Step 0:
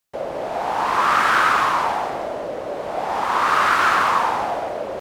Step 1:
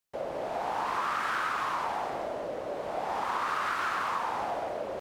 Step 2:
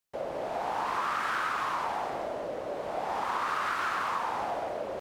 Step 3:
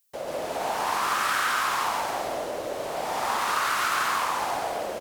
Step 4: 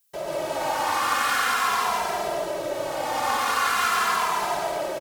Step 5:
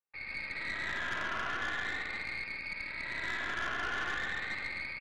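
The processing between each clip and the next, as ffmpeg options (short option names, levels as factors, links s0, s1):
-af "acompressor=threshold=0.1:ratio=6,volume=0.422"
-af anull
-filter_complex "[0:a]crystalizer=i=4:c=0,asplit=2[s0][s1];[s1]aecho=0:1:139.9|189.5:0.891|0.355[s2];[s0][s2]amix=inputs=2:normalize=0"
-filter_complex "[0:a]asplit=2[s0][s1];[s1]adelay=2.6,afreqshift=-0.45[s2];[s0][s2]amix=inputs=2:normalize=1,volume=1.88"
-af "lowpass=f=2400:t=q:w=0.5098,lowpass=f=2400:t=q:w=0.6013,lowpass=f=2400:t=q:w=0.9,lowpass=f=2400:t=q:w=2.563,afreqshift=-2800,aeval=exprs='(tanh(12.6*val(0)+0.75)-tanh(0.75))/12.6':c=same,volume=0.422"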